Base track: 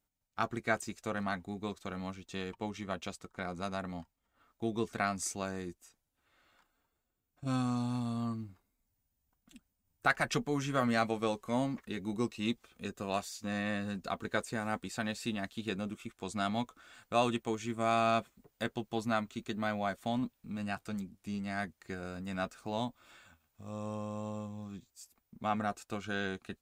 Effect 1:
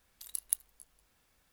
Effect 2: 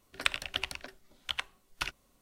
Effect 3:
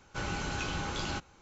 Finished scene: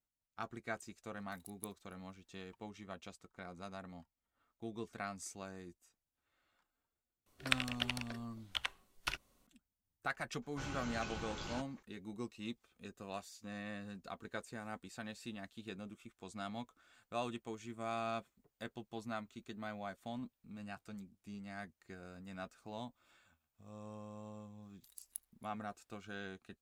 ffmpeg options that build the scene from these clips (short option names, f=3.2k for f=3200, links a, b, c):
-filter_complex "[1:a]asplit=2[a][b];[0:a]volume=-10.5dB[c];[a]atrim=end=1.52,asetpts=PTS-STARTPTS,volume=-17.5dB,afade=t=in:d=0.004:c=hsin,afade=t=out:st=1.516:d=0.004:c=hsin,adelay=1110[d];[2:a]atrim=end=2.21,asetpts=PTS-STARTPTS,volume=-4dB,afade=t=in:d=0.004:c=hsin,afade=t=out:st=2.206:d=0.004:c=hsin,adelay=7260[e];[3:a]atrim=end=1.41,asetpts=PTS-STARTPTS,volume=-10dB,afade=t=in:d=0.004:c=hsin,afade=t=out:st=1.406:d=0.004:c=hsin,adelay=459522S[f];[b]atrim=end=1.52,asetpts=PTS-STARTPTS,volume=-15.5dB,afade=t=in:d=0.004:c=hsin,afade=t=out:st=1.516:d=0.004:c=hsin,adelay=24630[g];[c][d][e][f][g]amix=inputs=5:normalize=0"